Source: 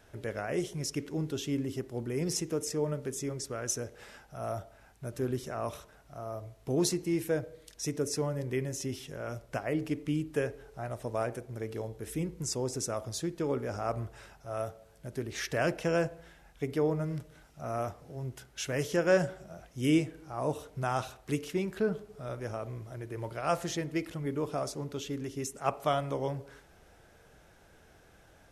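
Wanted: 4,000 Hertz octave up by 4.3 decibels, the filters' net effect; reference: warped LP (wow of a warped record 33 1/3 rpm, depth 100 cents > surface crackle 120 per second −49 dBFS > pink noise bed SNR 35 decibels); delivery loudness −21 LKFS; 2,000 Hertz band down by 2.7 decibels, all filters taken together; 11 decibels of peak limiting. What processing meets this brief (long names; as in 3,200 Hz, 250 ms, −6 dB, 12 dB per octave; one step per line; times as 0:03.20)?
parametric band 2,000 Hz −5.5 dB
parametric band 4,000 Hz +7.5 dB
brickwall limiter −25 dBFS
wow of a warped record 33 1/3 rpm, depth 100 cents
surface crackle 120 per second −49 dBFS
pink noise bed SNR 35 dB
level +15.5 dB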